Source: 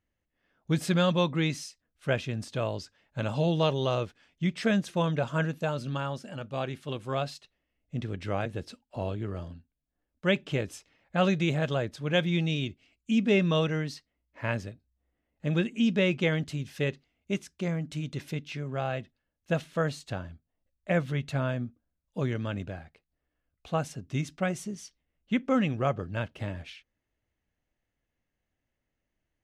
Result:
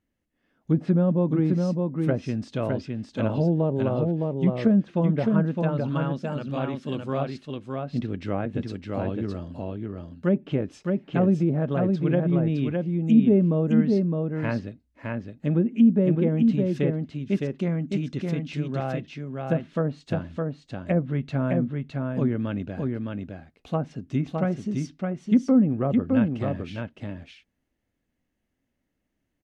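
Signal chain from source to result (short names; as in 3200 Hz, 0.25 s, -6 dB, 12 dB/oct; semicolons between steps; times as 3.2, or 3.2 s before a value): treble ducked by the level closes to 650 Hz, closed at -22 dBFS; bell 250 Hz +9 dB 1.2 oct; on a send: echo 0.612 s -3.5 dB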